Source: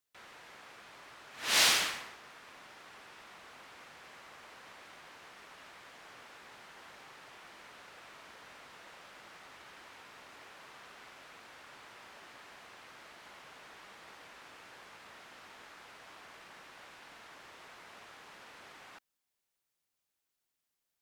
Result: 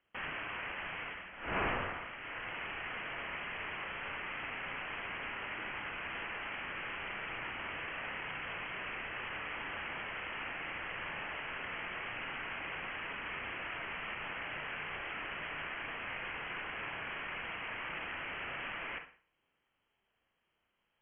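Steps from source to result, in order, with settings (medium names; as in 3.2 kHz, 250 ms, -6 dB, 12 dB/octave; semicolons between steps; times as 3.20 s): peaking EQ 92 Hz +4 dB 0.77 oct; frequency inversion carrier 3.2 kHz; gain riding 0.5 s; on a send: reverberation RT60 0.45 s, pre-delay 33 ms, DRR 6 dB; on the sum: trim +4.5 dB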